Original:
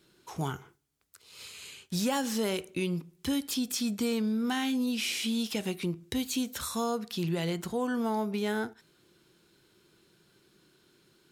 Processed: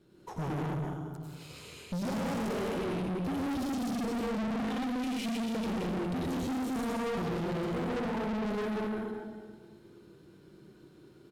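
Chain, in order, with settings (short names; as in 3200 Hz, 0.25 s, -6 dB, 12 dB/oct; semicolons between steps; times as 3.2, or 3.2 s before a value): tilt shelf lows +8 dB, about 1200 Hz; transient shaper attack +5 dB, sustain -1 dB; echo 0.195 s -7.5 dB; reverb RT60 1.6 s, pre-delay 88 ms, DRR -5 dB; tube stage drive 29 dB, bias 0.45; gain -2.5 dB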